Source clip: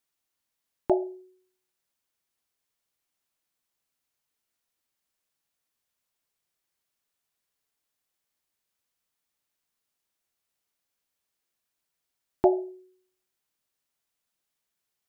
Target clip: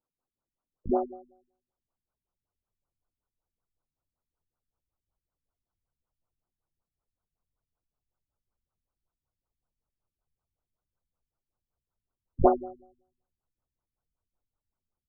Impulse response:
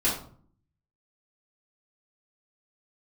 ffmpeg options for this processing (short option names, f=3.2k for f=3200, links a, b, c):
-filter_complex "[0:a]asubboost=boost=7:cutoff=69,asplit=4[a][b][c][d];[b]asetrate=29433,aresample=44100,atempo=1.49831,volume=-9dB[e];[c]asetrate=66075,aresample=44100,atempo=0.66742,volume=-4dB[f];[d]asetrate=88200,aresample=44100,atempo=0.5,volume=-3dB[g];[a][e][f][g]amix=inputs=4:normalize=0,asplit=2[h][i];[1:a]atrim=start_sample=2205[j];[i][j]afir=irnorm=-1:irlink=0,volume=-32.5dB[k];[h][k]amix=inputs=2:normalize=0,afftfilt=real='re*lt(b*sr/1024,270*pow(1600/270,0.5+0.5*sin(2*PI*5.3*pts/sr)))':imag='im*lt(b*sr/1024,270*pow(1600/270,0.5+0.5*sin(2*PI*5.3*pts/sr)))':win_size=1024:overlap=0.75"